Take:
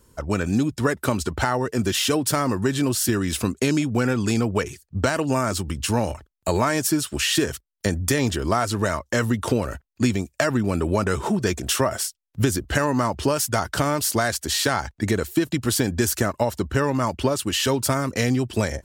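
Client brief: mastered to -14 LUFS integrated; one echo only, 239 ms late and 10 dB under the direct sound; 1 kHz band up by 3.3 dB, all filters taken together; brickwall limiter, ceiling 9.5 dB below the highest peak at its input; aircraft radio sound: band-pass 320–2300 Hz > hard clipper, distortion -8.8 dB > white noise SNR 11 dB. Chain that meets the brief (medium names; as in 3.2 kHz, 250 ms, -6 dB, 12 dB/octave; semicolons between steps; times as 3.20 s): peaking EQ 1 kHz +4.5 dB; peak limiter -12.5 dBFS; band-pass 320–2300 Hz; delay 239 ms -10 dB; hard clipper -25.5 dBFS; white noise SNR 11 dB; trim +16 dB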